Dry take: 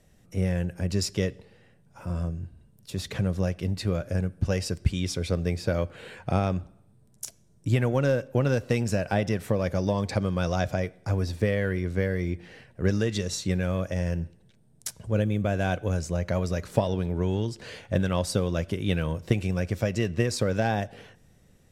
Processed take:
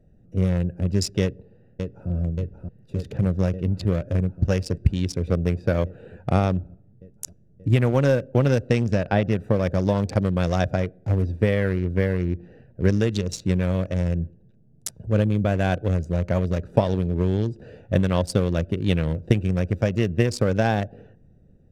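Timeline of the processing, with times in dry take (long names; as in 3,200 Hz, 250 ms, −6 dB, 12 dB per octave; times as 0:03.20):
0:01.21–0:02.10: delay throw 580 ms, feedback 80%, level −5 dB
0:08.67–0:09.30: low-pass filter 8,700 Hz → 4,100 Hz
whole clip: adaptive Wiener filter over 41 samples; level +5 dB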